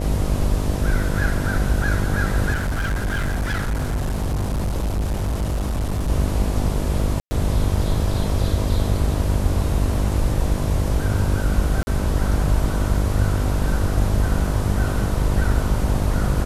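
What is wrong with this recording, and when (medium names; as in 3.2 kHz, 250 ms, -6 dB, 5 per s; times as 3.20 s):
buzz 50 Hz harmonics 13 -24 dBFS
2.52–6.10 s: clipped -19 dBFS
7.20–7.31 s: dropout 110 ms
11.83–11.87 s: dropout 40 ms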